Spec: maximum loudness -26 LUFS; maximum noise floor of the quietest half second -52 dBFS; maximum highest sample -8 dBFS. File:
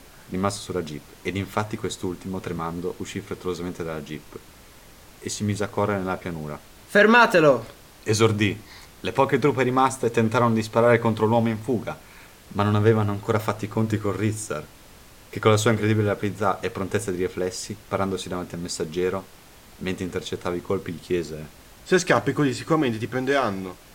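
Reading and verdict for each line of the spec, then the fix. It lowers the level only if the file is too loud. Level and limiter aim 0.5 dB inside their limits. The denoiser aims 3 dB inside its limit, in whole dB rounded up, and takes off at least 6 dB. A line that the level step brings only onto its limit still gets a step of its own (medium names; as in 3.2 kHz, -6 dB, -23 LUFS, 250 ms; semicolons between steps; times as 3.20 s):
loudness -24.0 LUFS: fail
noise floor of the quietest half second -48 dBFS: fail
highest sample -5.5 dBFS: fail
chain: noise reduction 6 dB, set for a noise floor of -48 dBFS; trim -2.5 dB; peak limiter -8.5 dBFS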